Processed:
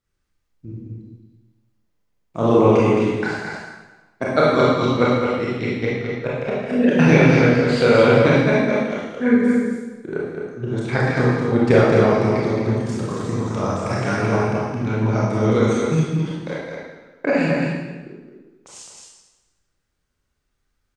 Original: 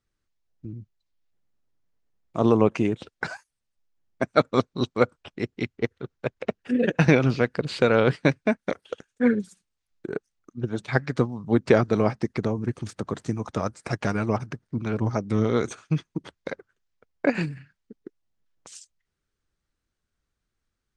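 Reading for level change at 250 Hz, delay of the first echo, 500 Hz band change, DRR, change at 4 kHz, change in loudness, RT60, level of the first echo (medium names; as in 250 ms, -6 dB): +7.0 dB, 217 ms, +7.5 dB, -8.0 dB, +6.5 dB, +7.0 dB, 1.2 s, -4.5 dB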